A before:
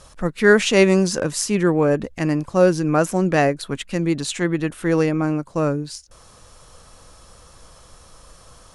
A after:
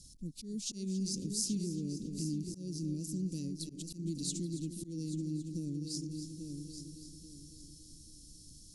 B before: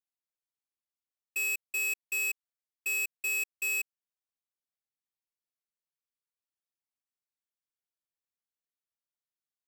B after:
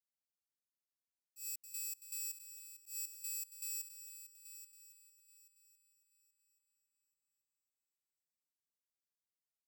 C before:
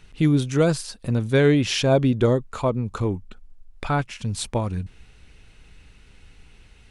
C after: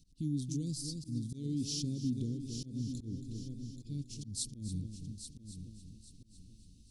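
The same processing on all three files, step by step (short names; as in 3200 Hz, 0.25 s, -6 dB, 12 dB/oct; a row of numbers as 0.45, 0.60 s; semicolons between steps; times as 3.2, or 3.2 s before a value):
multi-head echo 0.277 s, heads first and third, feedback 44%, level -12 dB; compressor 3:1, threshold -25 dBFS; elliptic band-stop 270–4600 Hz, stop band 60 dB; low shelf 140 Hz -6 dB; auto swell 0.131 s; gain -4 dB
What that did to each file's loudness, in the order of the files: -19.0, -13.0, -17.0 LU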